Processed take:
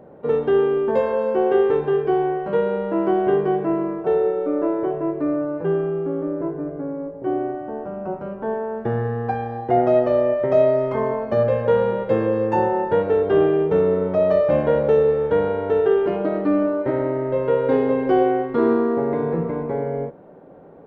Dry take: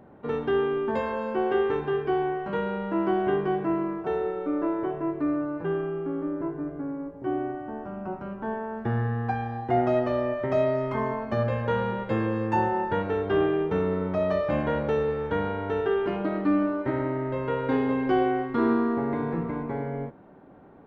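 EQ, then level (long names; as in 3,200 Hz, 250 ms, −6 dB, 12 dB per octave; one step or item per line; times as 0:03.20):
parametric band 160 Hz +7 dB 0.26 octaves
parametric band 510 Hz +12 dB 0.92 octaves
0.0 dB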